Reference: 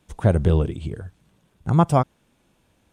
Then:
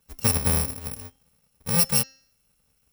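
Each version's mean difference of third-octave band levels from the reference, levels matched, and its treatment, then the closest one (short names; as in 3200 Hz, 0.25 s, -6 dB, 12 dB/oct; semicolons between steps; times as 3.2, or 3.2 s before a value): 14.5 dB: FFT order left unsorted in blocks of 128 samples; bell 110 Hz -3.5 dB 0.95 oct; de-hum 266.5 Hz, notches 27; gain -4 dB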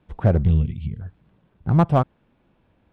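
4.5 dB: air absorption 430 m; spectral gain 0.44–1.02, 240–1900 Hz -17 dB; in parallel at -10.5 dB: wavefolder -16 dBFS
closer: second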